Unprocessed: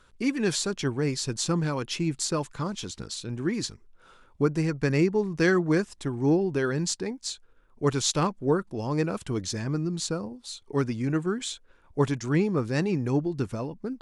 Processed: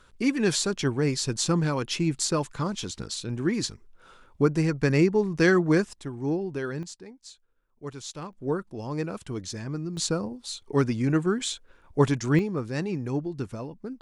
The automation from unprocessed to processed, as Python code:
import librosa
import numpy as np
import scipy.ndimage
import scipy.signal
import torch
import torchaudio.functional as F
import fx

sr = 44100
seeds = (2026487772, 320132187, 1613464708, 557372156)

y = fx.gain(x, sr, db=fx.steps((0.0, 2.0), (5.93, -5.0), (6.83, -13.0), (8.33, -4.0), (9.97, 3.0), (12.39, -3.5)))